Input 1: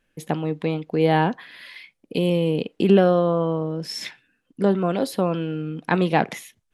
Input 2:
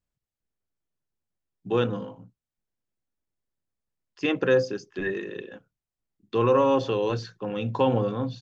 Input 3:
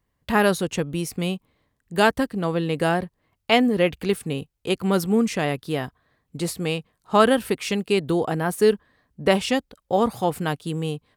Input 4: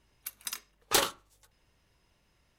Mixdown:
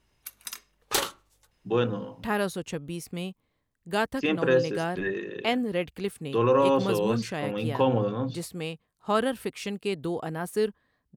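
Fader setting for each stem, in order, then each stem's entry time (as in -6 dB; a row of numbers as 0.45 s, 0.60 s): mute, -1.0 dB, -8.5 dB, -0.5 dB; mute, 0.00 s, 1.95 s, 0.00 s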